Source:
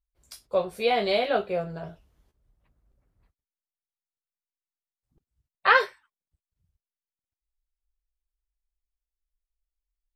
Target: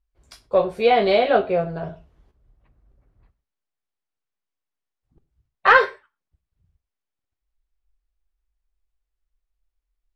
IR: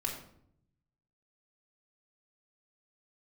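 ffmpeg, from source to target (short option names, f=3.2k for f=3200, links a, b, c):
-filter_complex "[0:a]acontrast=68,aemphasis=mode=reproduction:type=75fm,asplit=2[a][b];[1:a]atrim=start_sample=2205,afade=t=out:st=0.18:d=0.01,atrim=end_sample=8379[c];[b][c]afir=irnorm=-1:irlink=0,volume=-13.5dB[d];[a][d]amix=inputs=2:normalize=0,volume=-1dB"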